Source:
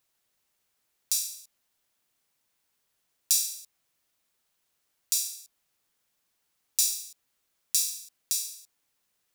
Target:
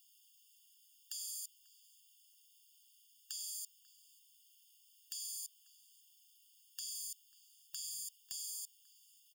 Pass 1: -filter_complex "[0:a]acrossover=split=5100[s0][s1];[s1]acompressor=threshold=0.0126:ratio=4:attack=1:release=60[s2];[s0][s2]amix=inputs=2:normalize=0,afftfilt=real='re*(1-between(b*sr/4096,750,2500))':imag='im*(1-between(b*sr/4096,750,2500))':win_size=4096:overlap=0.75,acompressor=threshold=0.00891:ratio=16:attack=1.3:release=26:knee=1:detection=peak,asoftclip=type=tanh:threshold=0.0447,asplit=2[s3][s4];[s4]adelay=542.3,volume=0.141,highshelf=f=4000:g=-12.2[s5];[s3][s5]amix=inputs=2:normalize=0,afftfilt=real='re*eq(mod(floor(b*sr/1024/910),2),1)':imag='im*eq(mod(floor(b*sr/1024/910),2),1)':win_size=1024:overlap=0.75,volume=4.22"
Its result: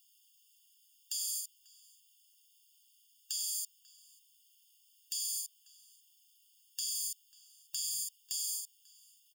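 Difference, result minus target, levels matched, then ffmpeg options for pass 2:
compression: peak gain reduction -8 dB
-filter_complex "[0:a]acrossover=split=5100[s0][s1];[s1]acompressor=threshold=0.0126:ratio=4:attack=1:release=60[s2];[s0][s2]amix=inputs=2:normalize=0,afftfilt=real='re*(1-between(b*sr/4096,750,2500))':imag='im*(1-between(b*sr/4096,750,2500))':win_size=4096:overlap=0.75,acompressor=threshold=0.00335:ratio=16:attack=1.3:release=26:knee=1:detection=peak,asoftclip=type=tanh:threshold=0.0447,asplit=2[s3][s4];[s4]adelay=542.3,volume=0.141,highshelf=f=4000:g=-12.2[s5];[s3][s5]amix=inputs=2:normalize=0,afftfilt=real='re*eq(mod(floor(b*sr/1024/910),2),1)':imag='im*eq(mod(floor(b*sr/1024/910),2),1)':win_size=1024:overlap=0.75,volume=4.22"

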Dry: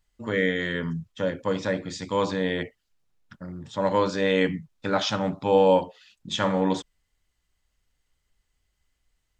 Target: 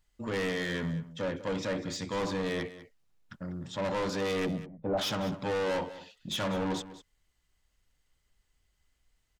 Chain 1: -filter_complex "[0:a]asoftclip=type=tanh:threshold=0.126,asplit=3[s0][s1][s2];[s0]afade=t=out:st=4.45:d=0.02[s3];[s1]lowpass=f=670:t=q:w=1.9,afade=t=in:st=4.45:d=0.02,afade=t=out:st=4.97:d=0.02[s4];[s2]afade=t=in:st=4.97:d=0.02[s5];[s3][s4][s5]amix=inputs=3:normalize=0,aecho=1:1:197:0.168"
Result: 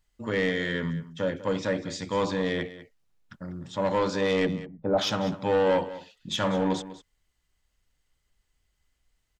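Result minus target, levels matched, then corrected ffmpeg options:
saturation: distortion -7 dB
-filter_complex "[0:a]asoftclip=type=tanh:threshold=0.0376,asplit=3[s0][s1][s2];[s0]afade=t=out:st=4.45:d=0.02[s3];[s1]lowpass=f=670:t=q:w=1.9,afade=t=in:st=4.45:d=0.02,afade=t=out:st=4.97:d=0.02[s4];[s2]afade=t=in:st=4.97:d=0.02[s5];[s3][s4][s5]amix=inputs=3:normalize=0,aecho=1:1:197:0.168"

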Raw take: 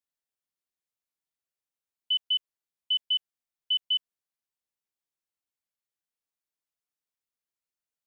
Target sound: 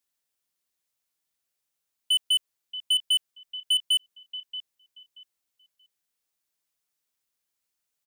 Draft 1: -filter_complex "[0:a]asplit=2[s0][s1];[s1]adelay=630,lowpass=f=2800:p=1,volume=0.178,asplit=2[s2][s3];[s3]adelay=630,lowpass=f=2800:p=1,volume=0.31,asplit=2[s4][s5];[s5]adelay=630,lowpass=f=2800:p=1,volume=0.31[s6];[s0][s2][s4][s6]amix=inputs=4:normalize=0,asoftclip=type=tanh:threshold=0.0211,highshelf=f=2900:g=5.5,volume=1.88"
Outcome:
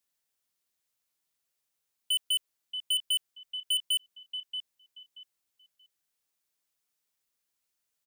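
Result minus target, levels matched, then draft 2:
saturation: distortion +6 dB
-filter_complex "[0:a]asplit=2[s0][s1];[s1]adelay=630,lowpass=f=2800:p=1,volume=0.178,asplit=2[s2][s3];[s3]adelay=630,lowpass=f=2800:p=1,volume=0.31,asplit=2[s4][s5];[s5]adelay=630,lowpass=f=2800:p=1,volume=0.31[s6];[s0][s2][s4][s6]amix=inputs=4:normalize=0,asoftclip=type=tanh:threshold=0.0447,highshelf=f=2900:g=5.5,volume=1.88"

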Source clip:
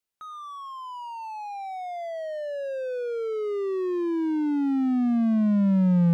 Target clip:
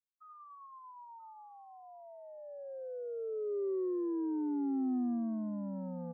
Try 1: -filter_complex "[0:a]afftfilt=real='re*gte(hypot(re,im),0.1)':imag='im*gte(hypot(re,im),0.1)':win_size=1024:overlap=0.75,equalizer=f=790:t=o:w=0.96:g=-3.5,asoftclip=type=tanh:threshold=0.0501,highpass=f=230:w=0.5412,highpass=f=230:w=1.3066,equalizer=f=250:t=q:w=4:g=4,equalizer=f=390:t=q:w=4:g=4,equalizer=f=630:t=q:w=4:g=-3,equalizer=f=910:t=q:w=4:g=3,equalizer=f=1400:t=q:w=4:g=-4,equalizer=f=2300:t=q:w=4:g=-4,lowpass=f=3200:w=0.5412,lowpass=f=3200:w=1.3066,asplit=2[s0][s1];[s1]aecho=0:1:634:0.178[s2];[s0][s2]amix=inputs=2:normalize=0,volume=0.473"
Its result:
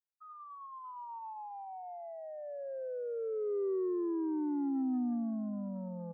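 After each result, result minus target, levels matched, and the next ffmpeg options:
echo 349 ms early; 1 kHz band +6.0 dB
-filter_complex "[0:a]afftfilt=real='re*gte(hypot(re,im),0.1)':imag='im*gte(hypot(re,im),0.1)':win_size=1024:overlap=0.75,equalizer=f=790:t=o:w=0.96:g=-3.5,asoftclip=type=tanh:threshold=0.0501,highpass=f=230:w=0.5412,highpass=f=230:w=1.3066,equalizer=f=250:t=q:w=4:g=4,equalizer=f=390:t=q:w=4:g=4,equalizer=f=630:t=q:w=4:g=-3,equalizer=f=910:t=q:w=4:g=3,equalizer=f=1400:t=q:w=4:g=-4,equalizer=f=2300:t=q:w=4:g=-4,lowpass=f=3200:w=0.5412,lowpass=f=3200:w=1.3066,asplit=2[s0][s1];[s1]aecho=0:1:983:0.178[s2];[s0][s2]amix=inputs=2:normalize=0,volume=0.473"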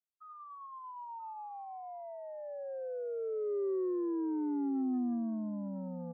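1 kHz band +6.0 dB
-filter_complex "[0:a]afftfilt=real='re*gte(hypot(re,im),0.1)':imag='im*gte(hypot(re,im),0.1)':win_size=1024:overlap=0.75,equalizer=f=790:t=o:w=0.96:g=-13,asoftclip=type=tanh:threshold=0.0501,highpass=f=230:w=0.5412,highpass=f=230:w=1.3066,equalizer=f=250:t=q:w=4:g=4,equalizer=f=390:t=q:w=4:g=4,equalizer=f=630:t=q:w=4:g=-3,equalizer=f=910:t=q:w=4:g=3,equalizer=f=1400:t=q:w=4:g=-4,equalizer=f=2300:t=q:w=4:g=-4,lowpass=f=3200:w=0.5412,lowpass=f=3200:w=1.3066,asplit=2[s0][s1];[s1]aecho=0:1:983:0.178[s2];[s0][s2]amix=inputs=2:normalize=0,volume=0.473"

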